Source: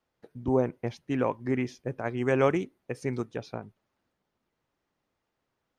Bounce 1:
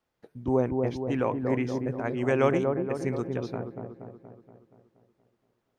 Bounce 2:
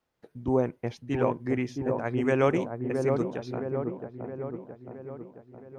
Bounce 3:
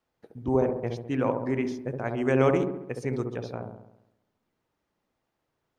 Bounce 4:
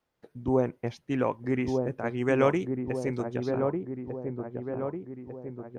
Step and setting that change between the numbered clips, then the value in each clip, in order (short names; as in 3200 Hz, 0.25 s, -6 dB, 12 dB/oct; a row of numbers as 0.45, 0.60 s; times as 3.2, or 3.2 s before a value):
dark delay, time: 237, 668, 68, 1198 ms